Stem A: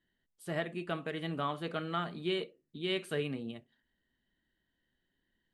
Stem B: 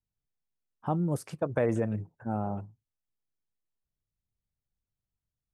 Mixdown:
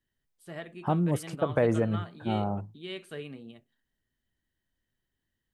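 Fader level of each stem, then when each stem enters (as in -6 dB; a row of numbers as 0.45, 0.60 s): -5.5, +2.5 dB; 0.00, 0.00 s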